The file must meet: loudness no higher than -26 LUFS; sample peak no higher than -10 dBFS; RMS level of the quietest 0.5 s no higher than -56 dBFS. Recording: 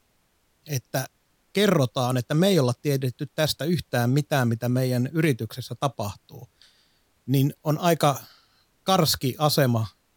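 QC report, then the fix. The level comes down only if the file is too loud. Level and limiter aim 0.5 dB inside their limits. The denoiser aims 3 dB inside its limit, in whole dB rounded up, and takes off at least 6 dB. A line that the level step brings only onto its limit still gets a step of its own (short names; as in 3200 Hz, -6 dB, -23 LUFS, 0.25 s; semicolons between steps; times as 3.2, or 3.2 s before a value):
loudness -24.5 LUFS: fail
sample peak -5.0 dBFS: fail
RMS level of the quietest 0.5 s -67 dBFS: OK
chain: gain -2 dB; limiter -10.5 dBFS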